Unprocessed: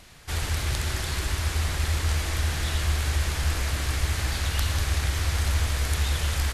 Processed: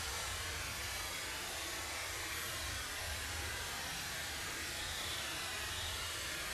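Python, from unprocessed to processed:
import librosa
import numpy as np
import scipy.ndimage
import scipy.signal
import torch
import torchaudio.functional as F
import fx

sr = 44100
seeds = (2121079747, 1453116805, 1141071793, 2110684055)

y = fx.highpass(x, sr, hz=520.0, slope=6)
y = fx.paulstretch(y, sr, seeds[0], factor=8.7, window_s=0.05, from_s=2.09)
y = y * librosa.db_to_amplitude(-8.5)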